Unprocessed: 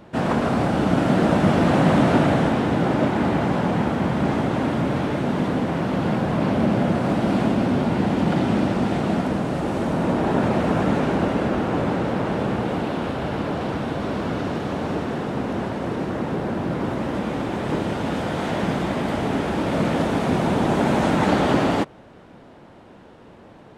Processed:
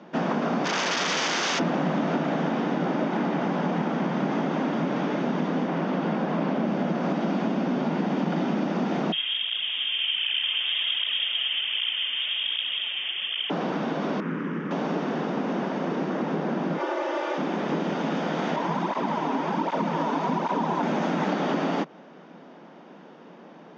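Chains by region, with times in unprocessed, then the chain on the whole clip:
0:00.64–0:01.58: ceiling on every frequency bin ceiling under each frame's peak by 19 dB + wrap-around overflow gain 15.5 dB
0:05.67–0:06.65: high-pass filter 140 Hz + high-shelf EQ 5,800 Hz −7 dB
0:09.12–0:13.50: high-frequency loss of the air 410 metres + voice inversion scrambler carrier 3,400 Hz + through-zero flanger with one copy inverted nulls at 1.3 Hz, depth 7.4 ms
0:14.20–0:14.71: high-frequency loss of the air 170 metres + phaser with its sweep stopped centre 1,700 Hz, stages 4 + highs frequency-modulated by the lows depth 0.24 ms
0:16.77–0:17.38: elliptic high-pass filter 360 Hz, stop band 50 dB + comb filter 3.4 ms, depth 96%
0:18.56–0:20.83: parametric band 960 Hz +13 dB 0.31 octaves + through-zero flanger with one copy inverted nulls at 1.3 Hz, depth 6.1 ms
whole clip: Chebyshev band-pass filter 160–6,400 Hz, order 5; notch filter 4,100 Hz, Q 10; downward compressor, threshold −22 dBFS

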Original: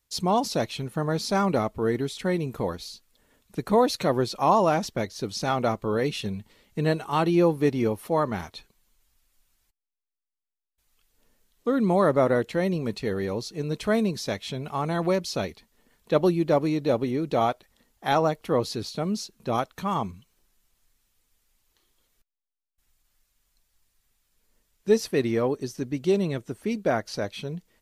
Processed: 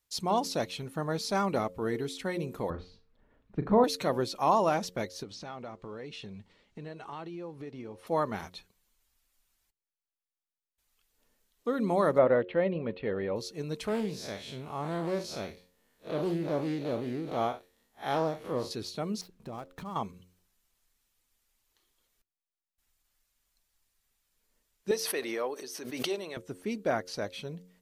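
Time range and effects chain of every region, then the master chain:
0:02.70–0:03.84: low-pass filter 1,800 Hz + low-shelf EQ 210 Hz +11 dB + flutter between parallel walls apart 6.4 metres, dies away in 0.25 s
0:05.23–0:08.07: downward compressor, threshold −33 dBFS + noise that follows the level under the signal 33 dB + high-frequency loss of the air 92 metres
0:12.18–0:13.36: Butterworth low-pass 3,300 Hz + parametric band 550 Hz +7 dB 0.32 octaves
0:13.88–0:18.71: spectrum smeared in time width 105 ms + high-shelf EQ 11,000 Hz +4 dB + highs frequency-modulated by the lows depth 0.22 ms
0:19.21–0:19.96: gap after every zero crossing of 0.059 ms + spectral tilt −2 dB per octave + downward compressor 16 to 1, threshold −30 dBFS
0:24.91–0:26.37: high-pass filter 510 Hz + notch filter 7,300 Hz, Q 7.3 + background raised ahead of every attack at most 39 dB per second
whole clip: low-shelf EQ 230 Hz −5 dB; hum removal 90.32 Hz, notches 6; level −4 dB

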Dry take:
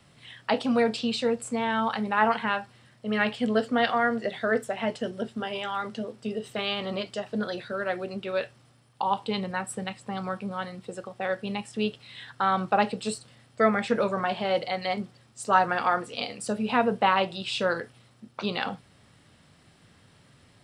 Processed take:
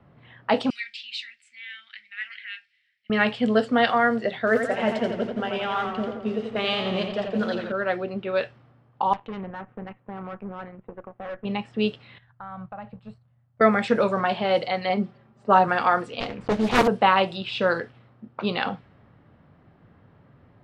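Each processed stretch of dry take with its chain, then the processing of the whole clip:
0:00.70–0:03.10: elliptic high-pass filter 2,000 Hz, stop band 50 dB + high-shelf EQ 5,100 Hz +6.5 dB
0:04.47–0:07.72: hold until the input has moved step −44.5 dBFS + feedback echo with a swinging delay time 86 ms, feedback 64%, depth 80 cents, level −6.5 dB
0:09.13–0:11.45: mu-law and A-law mismatch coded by A + low-pass filter 2,800 Hz 24 dB per octave + tube saturation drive 34 dB, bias 0.7
0:12.18–0:13.61: mu-law and A-law mismatch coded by A + drawn EQ curve 120 Hz 0 dB, 400 Hz −24 dB, 610 Hz −12 dB + downward compressor 4 to 1, threshold −37 dBFS
0:14.89–0:15.68: high-shelf EQ 2,300 Hz −8 dB + comb filter 5.1 ms
0:16.20–0:16.88: one scale factor per block 3 bits + spectral tilt −1.5 dB per octave + highs frequency-modulated by the lows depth 0.84 ms
whole clip: high-shelf EQ 9,000 Hz −9.5 dB; low-pass that shuts in the quiet parts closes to 1,200 Hz, open at −20 dBFS; level +4 dB

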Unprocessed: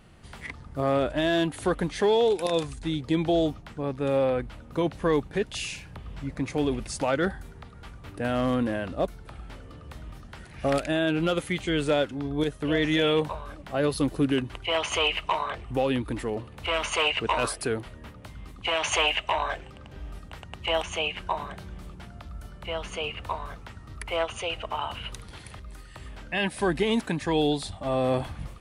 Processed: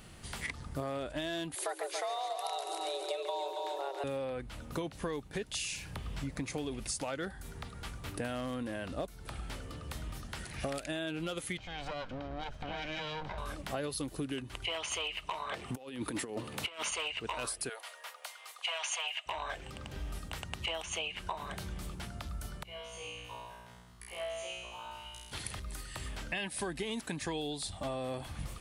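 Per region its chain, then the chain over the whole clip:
0:01.55–0:04.04: high-pass filter 54 Hz + echo machine with several playback heads 140 ms, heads first and second, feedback 42%, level −9 dB + frequency shifter +270 Hz
0:11.57–0:13.38: lower of the sound and its delayed copy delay 1.3 ms + downward compressor 4 to 1, threshold −36 dBFS + high-frequency loss of the air 220 metres
0:15.52–0:16.91: high-pass filter 180 Hz + low-shelf EQ 250 Hz +2.5 dB + compressor whose output falls as the input rises −33 dBFS, ratio −0.5
0:17.69–0:19.26: Butterworth high-pass 580 Hz + comb filter 4.2 ms, depth 31%
0:22.63–0:25.32: notch filter 1,300 Hz, Q 15 + tuned comb filter 60 Hz, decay 1.3 s, mix 100%
whole clip: high-shelf EQ 3,700 Hz +11.5 dB; downward compressor 10 to 1, threshold −34 dBFS

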